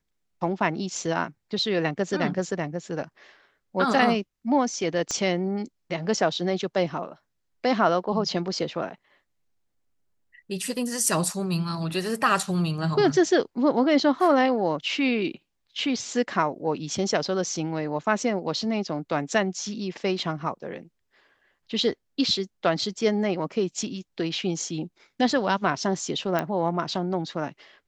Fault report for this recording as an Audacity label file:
5.110000	5.110000	pop -15 dBFS
26.390000	26.390000	pop -12 dBFS

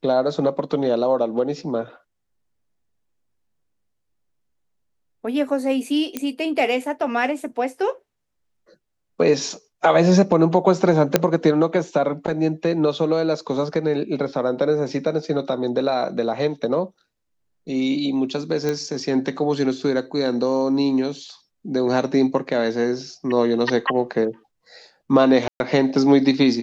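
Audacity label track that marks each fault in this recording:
6.170000	6.170000	pop -10 dBFS
11.160000	11.160000	pop 0 dBFS
18.690000	18.690000	pop -11 dBFS
25.480000	25.600000	dropout 121 ms

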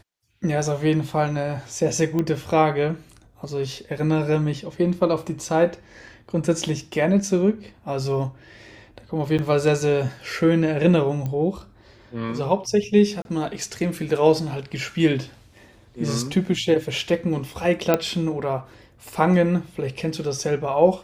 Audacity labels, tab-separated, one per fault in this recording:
2.190000	2.190000	pop -13 dBFS
9.380000	9.390000	dropout 7.9 ms
11.260000	11.260000	pop -17 dBFS
13.220000	13.250000	dropout 31 ms
17.940000	17.940000	pop -5 dBFS

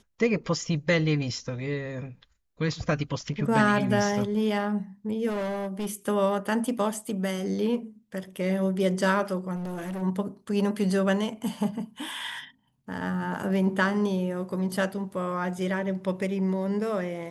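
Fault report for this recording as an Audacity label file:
5.280000	5.870000	clipped -27 dBFS
9.550000	10.030000	clipped -30.5 dBFS

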